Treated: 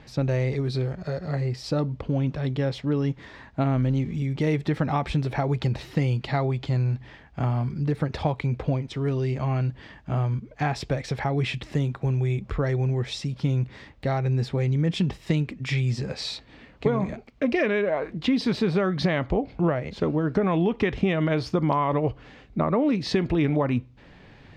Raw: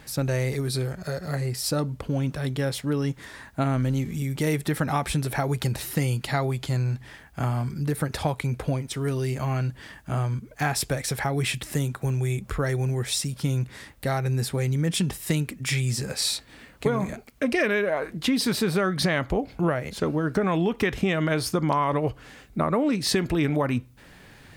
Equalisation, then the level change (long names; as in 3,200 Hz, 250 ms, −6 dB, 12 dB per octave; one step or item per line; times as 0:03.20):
high-frequency loss of the air 190 metres
parametric band 1,500 Hz −5 dB 0.65 octaves
+1.5 dB